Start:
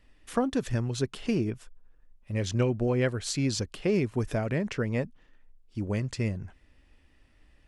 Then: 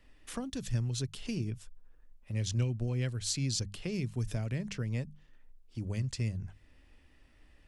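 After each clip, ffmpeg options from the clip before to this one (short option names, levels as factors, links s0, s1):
-filter_complex "[0:a]bandreject=f=50:t=h:w=6,bandreject=f=100:t=h:w=6,bandreject=f=150:t=h:w=6,bandreject=f=200:t=h:w=6,acrossover=split=170|3000[s0][s1][s2];[s1]acompressor=threshold=0.00224:ratio=2[s3];[s0][s3][s2]amix=inputs=3:normalize=0"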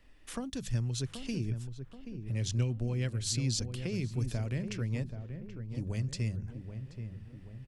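-filter_complex "[0:a]asplit=2[s0][s1];[s1]adelay=780,lowpass=f=1100:p=1,volume=0.398,asplit=2[s2][s3];[s3]adelay=780,lowpass=f=1100:p=1,volume=0.53,asplit=2[s4][s5];[s5]adelay=780,lowpass=f=1100:p=1,volume=0.53,asplit=2[s6][s7];[s7]adelay=780,lowpass=f=1100:p=1,volume=0.53,asplit=2[s8][s9];[s9]adelay=780,lowpass=f=1100:p=1,volume=0.53,asplit=2[s10][s11];[s11]adelay=780,lowpass=f=1100:p=1,volume=0.53[s12];[s0][s2][s4][s6][s8][s10][s12]amix=inputs=7:normalize=0"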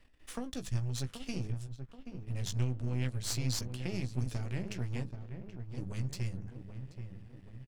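-filter_complex "[0:a]aeval=exprs='if(lt(val(0),0),0.251*val(0),val(0))':c=same,asplit=2[s0][s1];[s1]adelay=16,volume=0.355[s2];[s0][s2]amix=inputs=2:normalize=0"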